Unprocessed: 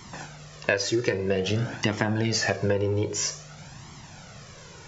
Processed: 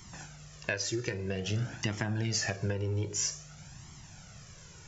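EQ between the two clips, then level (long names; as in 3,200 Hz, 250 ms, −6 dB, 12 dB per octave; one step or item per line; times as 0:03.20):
graphic EQ with 10 bands 125 Hz −3 dB, 250 Hz −7 dB, 500 Hz −10 dB, 1,000 Hz −8 dB, 2,000 Hz −5 dB, 4,000 Hz −7 dB
0.0 dB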